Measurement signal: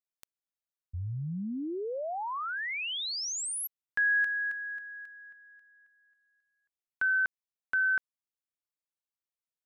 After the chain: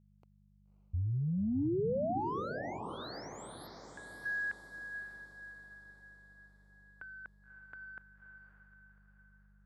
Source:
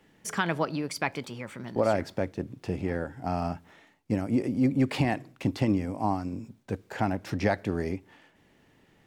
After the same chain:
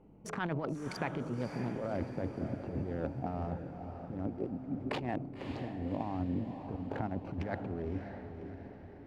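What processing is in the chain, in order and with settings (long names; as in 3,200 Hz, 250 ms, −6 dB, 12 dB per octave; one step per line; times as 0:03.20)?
adaptive Wiener filter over 25 samples
brickwall limiter −22.5 dBFS
compressor whose output falls as the input rises −35 dBFS, ratio −0.5
hum with harmonics 50 Hz, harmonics 4, −66 dBFS −2 dB per octave
low-pass filter 1,700 Hz 6 dB per octave
feedback delay with all-pass diffusion 575 ms, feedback 49%, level −7.5 dB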